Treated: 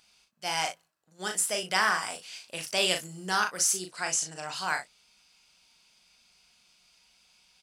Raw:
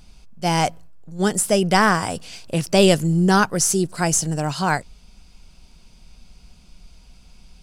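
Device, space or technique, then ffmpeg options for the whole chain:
filter by subtraction: -filter_complex "[0:a]asplit=2[a][b];[b]lowpass=2.2k,volume=-1[c];[a][c]amix=inputs=2:normalize=0,asettb=1/sr,asplit=3[d][e][f];[d]atrim=end=3.864[g];[e]atrim=start=3.86:end=4.53,asetpts=PTS-STARTPTS,afade=t=in:d=0.004:c=qsin,afade=t=out:st=0.666:d=0.004:c=qsin,lowpass=8.1k[h];[f]atrim=start=4.526[i];[g][h]acrossfade=d=0.004:c1=hsin:c2=qsin[j];[j][i]acrossfade=d=0.004:c1=qsin:c2=hsin,aecho=1:1:38|60:0.531|0.178,volume=-7dB"

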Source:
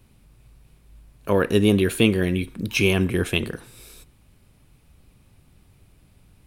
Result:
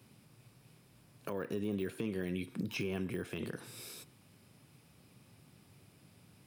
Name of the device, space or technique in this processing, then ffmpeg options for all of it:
broadcast voice chain: -af "highpass=f=110:w=0.5412,highpass=f=110:w=1.3066,deesser=0.8,acompressor=threshold=-30dB:ratio=3,equalizer=f=5.1k:t=o:w=0.2:g=6,alimiter=level_in=1dB:limit=-24dB:level=0:latency=1:release=212,volume=-1dB,volume=-2dB"

